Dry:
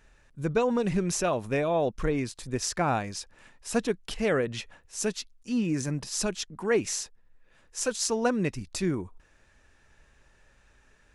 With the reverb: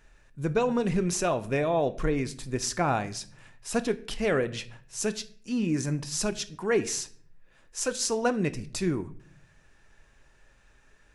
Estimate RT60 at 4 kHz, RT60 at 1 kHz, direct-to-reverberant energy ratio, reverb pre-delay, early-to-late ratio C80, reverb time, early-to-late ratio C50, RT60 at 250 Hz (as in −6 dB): 0.40 s, 0.45 s, 11.0 dB, 3 ms, 20.5 dB, 0.50 s, 17.5 dB, 0.90 s